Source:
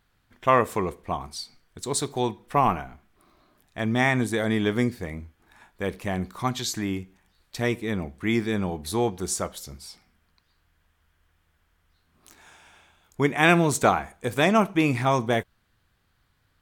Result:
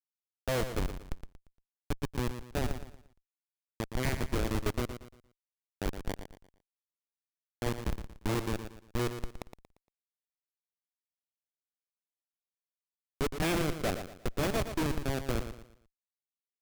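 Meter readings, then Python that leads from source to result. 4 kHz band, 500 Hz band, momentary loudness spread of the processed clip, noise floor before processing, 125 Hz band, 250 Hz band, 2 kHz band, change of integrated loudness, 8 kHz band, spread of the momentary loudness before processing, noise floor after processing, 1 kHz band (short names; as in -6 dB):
-8.5 dB, -10.5 dB, 14 LU, -69 dBFS, -7.0 dB, -11.0 dB, -13.0 dB, -10.0 dB, -11.5 dB, 16 LU, under -85 dBFS, -15.5 dB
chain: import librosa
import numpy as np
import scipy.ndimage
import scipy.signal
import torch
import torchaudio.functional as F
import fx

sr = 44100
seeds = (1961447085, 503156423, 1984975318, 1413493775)

p1 = scipy.signal.sosfilt(scipy.signal.butter(4, 3200.0, 'lowpass', fs=sr, output='sos'), x)
p2 = fx.dynamic_eq(p1, sr, hz=220.0, q=5.8, threshold_db=-37.0, ratio=4.0, max_db=-3)
p3 = fx.level_steps(p2, sr, step_db=19)
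p4 = p2 + (p3 * 10.0 ** (-1.0 / 20.0))
p5 = fx.fixed_phaser(p4, sr, hz=420.0, stages=4)
p6 = fx.schmitt(p5, sr, flips_db=-21.0)
y = p6 + fx.echo_feedback(p6, sr, ms=116, feedback_pct=34, wet_db=-9.5, dry=0)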